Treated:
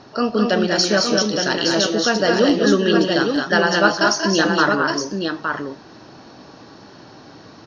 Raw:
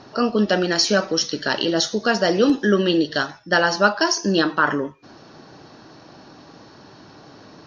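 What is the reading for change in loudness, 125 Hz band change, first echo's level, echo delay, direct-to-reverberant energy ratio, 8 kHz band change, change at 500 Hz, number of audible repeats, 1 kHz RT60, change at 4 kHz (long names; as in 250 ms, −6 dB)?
+2.0 dB, +2.5 dB, −10.0 dB, 186 ms, no reverb audible, +2.5 dB, +2.5 dB, 3, no reverb audible, +2.5 dB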